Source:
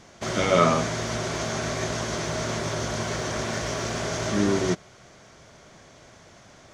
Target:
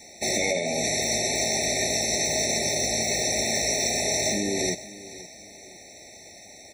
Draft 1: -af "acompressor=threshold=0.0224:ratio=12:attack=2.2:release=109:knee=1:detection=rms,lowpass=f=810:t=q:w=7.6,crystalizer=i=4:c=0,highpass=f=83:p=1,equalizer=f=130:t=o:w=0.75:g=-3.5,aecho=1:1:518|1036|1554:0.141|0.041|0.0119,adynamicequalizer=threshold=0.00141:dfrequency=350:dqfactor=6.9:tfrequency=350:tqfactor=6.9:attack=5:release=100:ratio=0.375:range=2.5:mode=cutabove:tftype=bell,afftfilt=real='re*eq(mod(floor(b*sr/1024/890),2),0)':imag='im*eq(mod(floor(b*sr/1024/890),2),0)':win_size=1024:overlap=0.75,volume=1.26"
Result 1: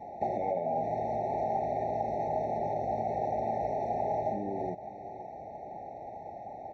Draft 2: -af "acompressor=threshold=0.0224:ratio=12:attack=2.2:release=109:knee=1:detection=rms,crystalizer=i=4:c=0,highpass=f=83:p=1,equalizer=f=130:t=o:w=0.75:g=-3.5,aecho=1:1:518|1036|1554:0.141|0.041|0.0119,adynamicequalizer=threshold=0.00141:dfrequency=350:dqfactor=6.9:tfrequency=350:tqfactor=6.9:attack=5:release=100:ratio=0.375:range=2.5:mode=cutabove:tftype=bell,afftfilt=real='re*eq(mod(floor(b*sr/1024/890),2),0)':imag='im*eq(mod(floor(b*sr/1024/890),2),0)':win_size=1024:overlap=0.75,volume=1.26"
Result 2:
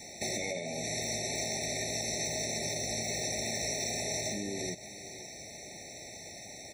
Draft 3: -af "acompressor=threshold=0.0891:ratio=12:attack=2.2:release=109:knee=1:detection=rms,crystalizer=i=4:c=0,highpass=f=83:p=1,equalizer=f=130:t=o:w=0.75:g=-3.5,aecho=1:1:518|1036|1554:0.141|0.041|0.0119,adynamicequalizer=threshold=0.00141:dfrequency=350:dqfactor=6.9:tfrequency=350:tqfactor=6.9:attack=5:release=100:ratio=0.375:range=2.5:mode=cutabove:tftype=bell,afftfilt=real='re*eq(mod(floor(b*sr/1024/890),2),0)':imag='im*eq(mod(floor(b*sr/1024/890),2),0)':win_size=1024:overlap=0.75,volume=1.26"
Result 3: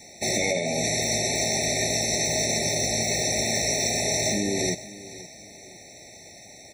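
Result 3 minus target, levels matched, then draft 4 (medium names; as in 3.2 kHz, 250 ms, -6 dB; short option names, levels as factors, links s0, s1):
125 Hz band +4.5 dB
-af "acompressor=threshold=0.0891:ratio=12:attack=2.2:release=109:knee=1:detection=rms,crystalizer=i=4:c=0,highpass=f=83:p=1,equalizer=f=130:t=o:w=0.75:g=-11,aecho=1:1:518|1036|1554:0.141|0.041|0.0119,adynamicequalizer=threshold=0.00141:dfrequency=350:dqfactor=6.9:tfrequency=350:tqfactor=6.9:attack=5:release=100:ratio=0.375:range=2.5:mode=cutabove:tftype=bell,afftfilt=real='re*eq(mod(floor(b*sr/1024/890),2),0)':imag='im*eq(mod(floor(b*sr/1024/890),2),0)':win_size=1024:overlap=0.75,volume=1.26"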